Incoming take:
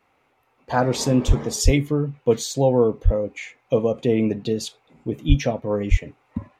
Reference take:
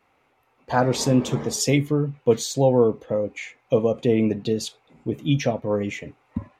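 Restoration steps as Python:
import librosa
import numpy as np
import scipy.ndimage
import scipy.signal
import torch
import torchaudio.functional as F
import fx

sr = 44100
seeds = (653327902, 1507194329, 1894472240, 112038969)

y = fx.fix_deplosive(x, sr, at_s=(1.27, 1.64, 3.04, 5.28, 5.9))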